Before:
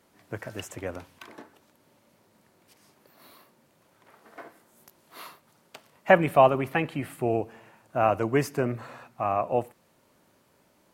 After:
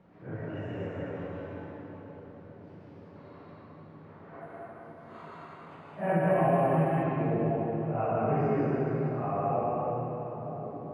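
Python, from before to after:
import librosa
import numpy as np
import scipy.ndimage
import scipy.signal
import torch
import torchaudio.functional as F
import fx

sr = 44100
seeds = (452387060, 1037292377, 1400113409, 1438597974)

y = fx.phase_scramble(x, sr, seeds[0], window_ms=200)
y = fx.peak_eq(y, sr, hz=160.0, db=15.0, octaves=0.21)
y = fx.echo_filtered(y, sr, ms=1080, feedback_pct=63, hz=810.0, wet_db=-16.0)
y = fx.rev_plate(y, sr, seeds[1], rt60_s=2.9, hf_ratio=0.85, predelay_ms=105, drr_db=-5.0)
y = fx.resample_bad(y, sr, factor=4, down='filtered', up='zero_stuff', at=(4.41, 7.03))
y = fx.spacing_loss(y, sr, db_at_10k=45)
y = fx.band_squash(y, sr, depth_pct=40)
y = y * librosa.db_to_amplitude(-6.0)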